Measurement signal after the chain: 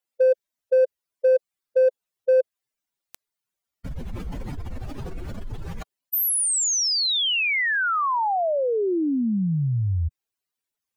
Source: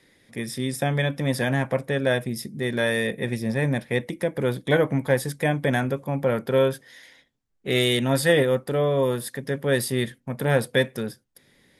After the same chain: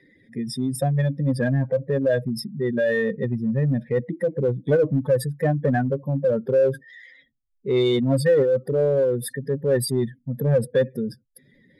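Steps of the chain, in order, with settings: spectral contrast enhancement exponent 2.4; in parallel at -8 dB: hard clipper -21.5 dBFS

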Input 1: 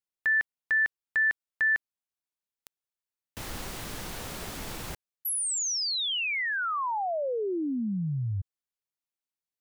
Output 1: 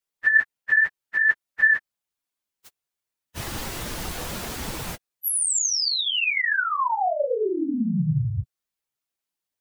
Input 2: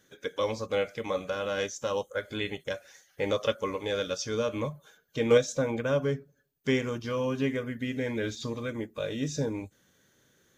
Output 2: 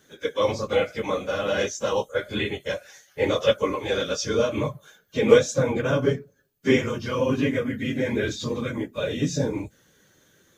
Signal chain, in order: phase randomisation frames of 50 ms; trim +6 dB

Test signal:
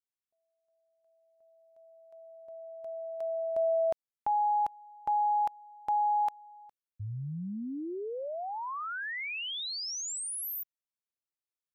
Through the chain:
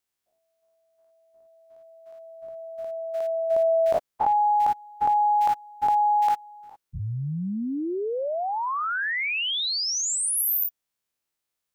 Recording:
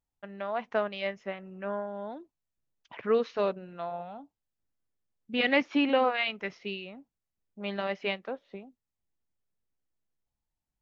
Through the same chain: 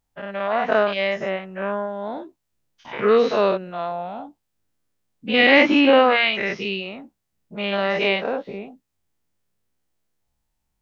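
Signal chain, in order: every event in the spectrogram widened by 120 ms; trim +6.5 dB

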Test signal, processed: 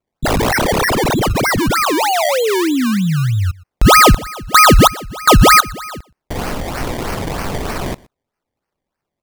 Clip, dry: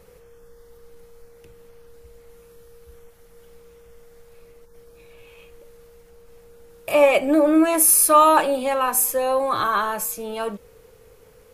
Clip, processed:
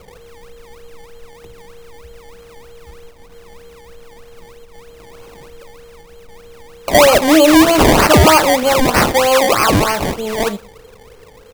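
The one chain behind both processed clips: decimation with a swept rate 23×, swing 100% 3.2 Hz; delay 121 ms -23.5 dB; loudness maximiser +10 dB; trim -1 dB

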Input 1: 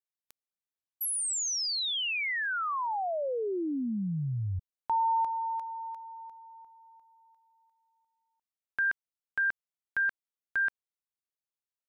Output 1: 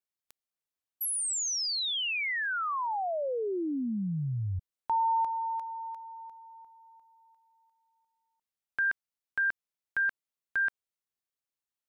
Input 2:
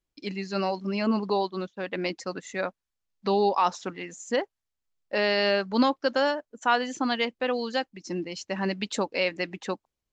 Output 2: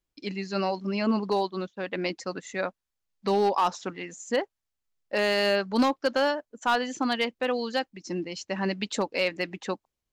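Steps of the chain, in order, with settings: overload inside the chain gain 16.5 dB

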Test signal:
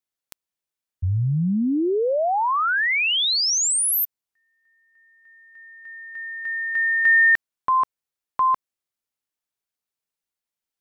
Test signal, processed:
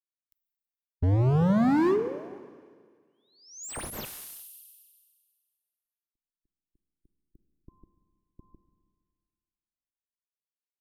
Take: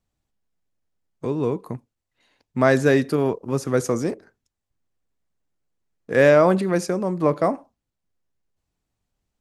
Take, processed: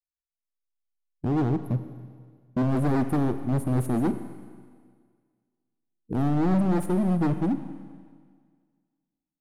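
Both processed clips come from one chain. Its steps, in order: expander on every frequency bin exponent 1.5; gate -50 dBFS, range -18 dB; treble shelf 6.1 kHz -8 dB; in parallel at +0.5 dB: compression 4:1, threshold -30 dBFS; on the sum: Chebyshev band-stop 340–9700 Hz, order 4; level rider gain up to 7 dB; overload inside the chain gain 21.5 dB; Schroeder reverb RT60 1.8 s, combs from 32 ms, DRR 10.5 dB; slew-rate limiter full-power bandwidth 82 Hz

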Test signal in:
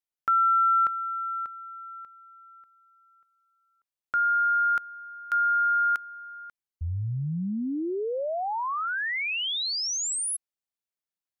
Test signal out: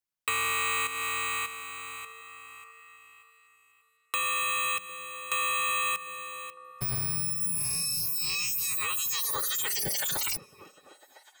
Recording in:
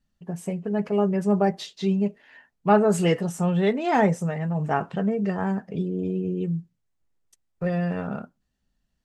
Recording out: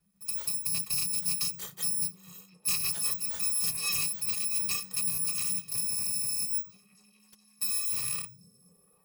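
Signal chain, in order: bit-reversed sample order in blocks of 256 samples; compression 6:1, threshold -29 dBFS; frequency shift -210 Hz; on a send: repeats whose band climbs or falls 251 ms, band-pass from 150 Hz, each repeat 0.7 oct, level -6.5 dB; on the sum: trim +1 dB

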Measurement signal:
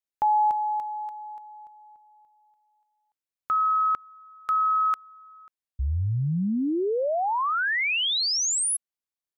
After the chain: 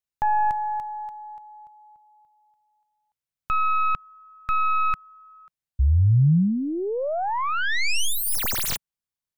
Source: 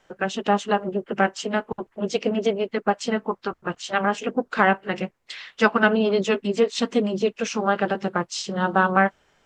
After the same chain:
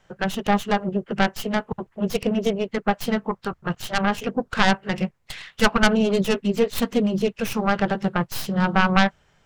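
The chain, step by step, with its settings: tracing distortion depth 0.24 ms; resonant low shelf 210 Hz +7 dB, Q 1.5

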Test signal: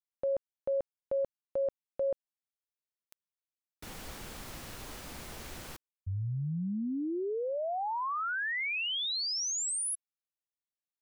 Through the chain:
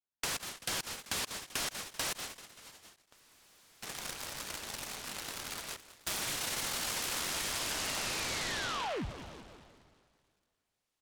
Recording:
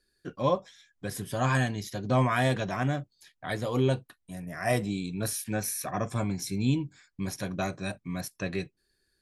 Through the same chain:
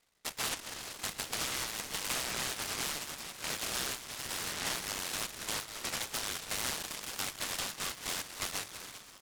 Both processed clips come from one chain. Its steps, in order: plate-style reverb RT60 2.6 s, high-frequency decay 0.85×, DRR 13.5 dB; in parallel at -11 dB: hysteresis with a dead band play -46.5 dBFS; on the sum: frequency inversion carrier 3.7 kHz; on a send: feedback delay 193 ms, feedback 50%, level -18 dB; on the sum: compression 6:1, threshold -34 dBFS; delay time shaken by noise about 1.9 kHz, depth 0.11 ms

